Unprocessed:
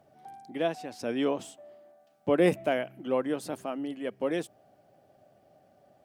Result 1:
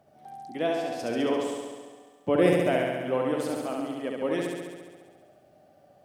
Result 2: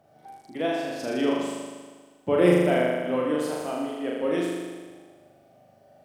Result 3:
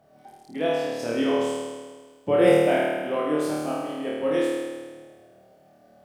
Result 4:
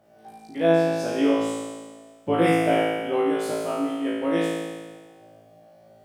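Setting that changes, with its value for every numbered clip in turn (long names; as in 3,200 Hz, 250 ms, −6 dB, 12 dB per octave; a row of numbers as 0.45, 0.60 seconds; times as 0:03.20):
flutter between parallel walls, walls apart: 11.8, 6.8, 4.5, 3.1 metres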